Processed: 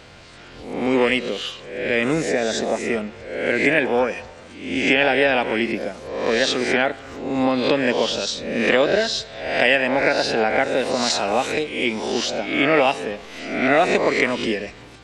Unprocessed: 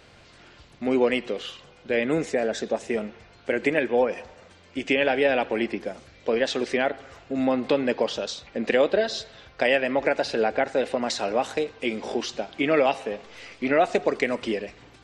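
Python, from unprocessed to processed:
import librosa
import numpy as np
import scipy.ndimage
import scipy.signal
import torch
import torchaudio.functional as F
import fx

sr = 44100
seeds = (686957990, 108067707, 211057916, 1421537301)

y = fx.spec_swells(x, sr, rise_s=0.68)
y = fx.dynamic_eq(y, sr, hz=510.0, q=0.8, threshold_db=-31.0, ratio=4.0, max_db=-5)
y = y * 10.0 ** (5.5 / 20.0)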